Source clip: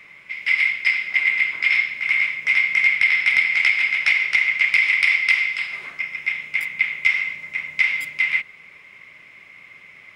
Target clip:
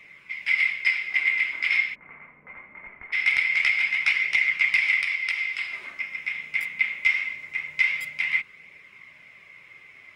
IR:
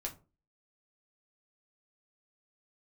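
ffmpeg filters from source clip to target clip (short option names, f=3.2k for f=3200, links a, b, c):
-filter_complex "[0:a]flanger=delay=0.3:depth=4.2:regen=-51:speed=0.23:shape=triangular,asplit=3[a][b][c];[a]afade=t=out:st=1.94:d=0.02[d];[b]lowpass=f=1.1k:w=0.5412,lowpass=f=1.1k:w=1.3066,afade=t=in:st=1.94:d=0.02,afade=t=out:st=3.12:d=0.02[e];[c]afade=t=in:st=3.12:d=0.02[f];[d][e][f]amix=inputs=3:normalize=0,asplit=3[g][h][i];[g]afade=t=out:st=5.01:d=0.02[j];[h]acompressor=threshold=-23dB:ratio=6,afade=t=in:st=5.01:d=0.02,afade=t=out:st=6.42:d=0.02[k];[i]afade=t=in:st=6.42:d=0.02[l];[j][k][l]amix=inputs=3:normalize=0"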